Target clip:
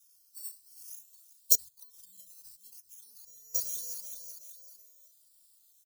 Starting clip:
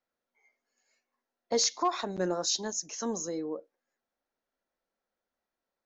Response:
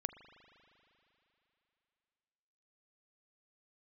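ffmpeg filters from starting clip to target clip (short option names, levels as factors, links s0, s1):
-filter_complex "[0:a]acrusher=samples=10:mix=1:aa=0.000001:lfo=1:lforange=6:lforate=0.51,acrossover=split=130[s0][s1];[s1]acompressor=threshold=0.0112:ratio=10[s2];[s0][s2]amix=inputs=2:normalize=0,highshelf=f=3900:g=11,asplit=5[s3][s4][s5][s6][s7];[s4]adelay=378,afreqshift=30,volume=0.158[s8];[s5]adelay=756,afreqshift=60,volume=0.0759[s9];[s6]adelay=1134,afreqshift=90,volume=0.0363[s10];[s7]adelay=1512,afreqshift=120,volume=0.0176[s11];[s3][s8][s9][s10][s11]amix=inputs=5:normalize=0,crystalizer=i=1:c=0,equalizer=f=1300:t=o:w=0.31:g=2.5,aexciter=amount=15.1:drive=5:freq=3300,asettb=1/sr,asplit=3[s12][s13][s14];[s12]atrim=end=1.554[s15];[s13]atrim=start=1.55:end=3.55,asetpts=PTS-STARTPTS,afade=t=in:d=0.004:c=qsin,afade=t=out:st=1.996:d=0.004:c=qsin,acompressor=threshold=0.00562:ratio=6[s16];[s14]atrim=start=3.546[s17];[s15][s16]acrossfade=d=0.004:c1=hsin:c2=qsin[s18];[s18][s17]acrossfade=d=0.004:c1=qsin:c2=hsin,afftfilt=real='re*eq(mod(floor(b*sr/1024/220),2),0)':imag='im*eq(mod(floor(b*sr/1024/220),2),0)':win_size=1024:overlap=0.75,volume=0.631"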